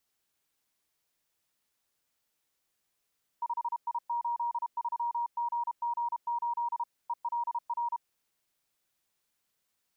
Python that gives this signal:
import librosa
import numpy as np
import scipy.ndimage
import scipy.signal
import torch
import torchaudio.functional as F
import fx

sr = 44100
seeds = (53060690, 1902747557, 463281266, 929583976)

y = fx.morse(sr, text='5I83GG8 ELR', wpm=32, hz=947.0, level_db=-28.5)